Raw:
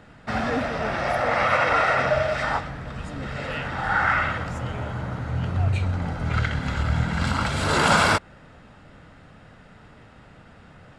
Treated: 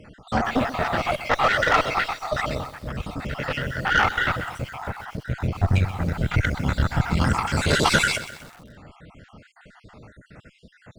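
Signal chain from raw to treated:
time-frequency cells dropped at random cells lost 55%
harmonic generator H 6 −18 dB, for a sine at −9 dBFS
feedback echo at a low word length 127 ms, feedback 55%, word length 7 bits, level −13.5 dB
level +4 dB

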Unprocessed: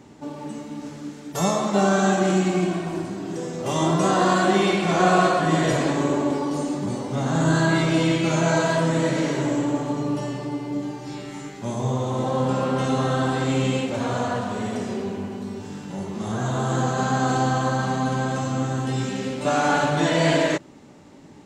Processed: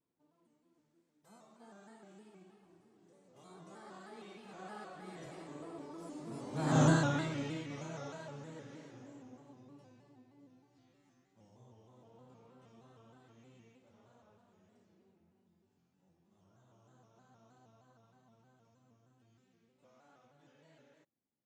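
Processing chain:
source passing by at 0:06.81, 28 m/s, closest 3.3 metres
pitch modulation by a square or saw wave square 3.2 Hz, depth 100 cents
level −5 dB

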